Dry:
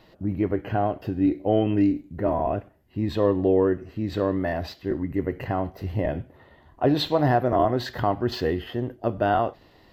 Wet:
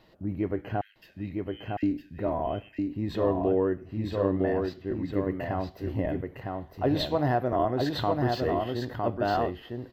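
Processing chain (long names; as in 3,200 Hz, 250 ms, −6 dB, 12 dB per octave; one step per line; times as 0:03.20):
0:00.81–0:01.83: Butterworth high-pass 1,600 Hz 96 dB per octave
0:03.74–0:04.92: high-shelf EQ 4,200 Hz −8.5 dB
single-tap delay 958 ms −3.5 dB
level −5 dB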